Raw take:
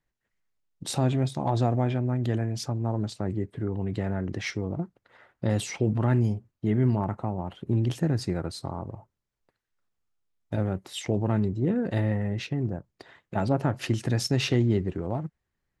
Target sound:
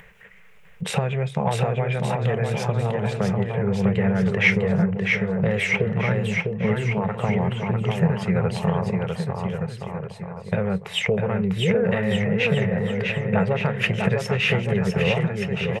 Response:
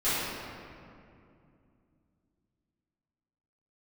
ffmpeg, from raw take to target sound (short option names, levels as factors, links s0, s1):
-af "acompressor=threshold=0.0355:ratio=6,firequalizer=gain_entry='entry(110,0);entry(190,11);entry(280,-23);entry(440,13);entry(640,3);entry(2400,14);entry(4300,-8);entry(7500,-5)':delay=0.05:min_phase=1,aecho=1:1:650|1170|1586|1919|2185:0.631|0.398|0.251|0.158|0.1,acompressor=mode=upward:threshold=0.0126:ratio=2.5,volume=2"